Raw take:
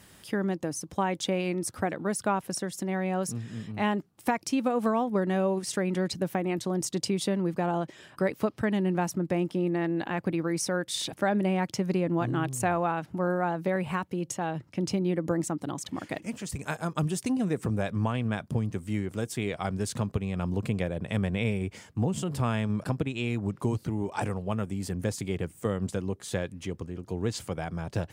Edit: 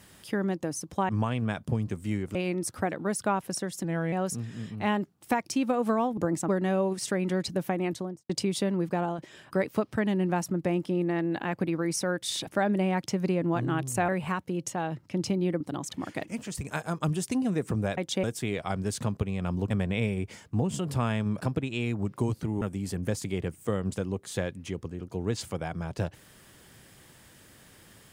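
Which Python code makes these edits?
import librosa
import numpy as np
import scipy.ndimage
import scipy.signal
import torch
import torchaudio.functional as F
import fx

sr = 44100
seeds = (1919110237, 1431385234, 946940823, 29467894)

y = fx.studio_fade_out(x, sr, start_s=6.51, length_s=0.44)
y = fx.edit(y, sr, fx.swap(start_s=1.09, length_s=0.26, other_s=17.92, other_length_s=1.26),
    fx.speed_span(start_s=2.84, length_s=0.25, speed=0.88),
    fx.fade_out_to(start_s=7.58, length_s=0.26, curve='qsin', floor_db=-6.5),
    fx.cut(start_s=12.74, length_s=0.98),
    fx.move(start_s=15.24, length_s=0.31, to_s=5.14),
    fx.cut(start_s=20.65, length_s=0.49),
    fx.cut(start_s=24.05, length_s=0.53), tone=tone)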